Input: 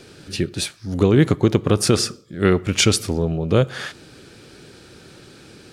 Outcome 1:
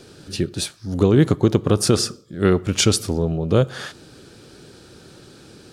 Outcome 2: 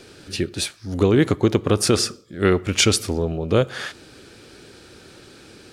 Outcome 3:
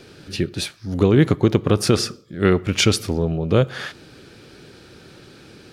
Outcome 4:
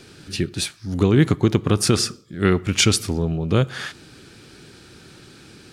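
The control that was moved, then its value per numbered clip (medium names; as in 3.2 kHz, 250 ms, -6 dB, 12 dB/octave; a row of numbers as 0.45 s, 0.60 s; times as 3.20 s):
peaking EQ, frequency: 2.2 kHz, 150 Hz, 8.2 kHz, 540 Hz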